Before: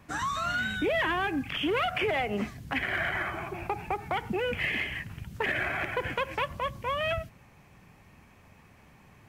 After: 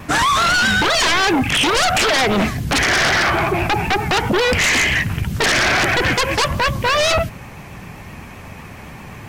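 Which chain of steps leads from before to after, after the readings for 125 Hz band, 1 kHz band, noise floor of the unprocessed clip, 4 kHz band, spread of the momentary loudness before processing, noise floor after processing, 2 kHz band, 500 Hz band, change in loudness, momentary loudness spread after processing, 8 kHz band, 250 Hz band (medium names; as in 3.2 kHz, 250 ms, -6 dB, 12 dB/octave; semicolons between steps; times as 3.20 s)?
+16.5 dB, +14.0 dB, -57 dBFS, +19.0 dB, 7 LU, -36 dBFS, +14.0 dB, +12.0 dB, +14.5 dB, 7 LU, +27.5 dB, +13.5 dB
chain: sine folder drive 12 dB, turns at -17.5 dBFS; vibrato 7.8 Hz 50 cents; trim +5 dB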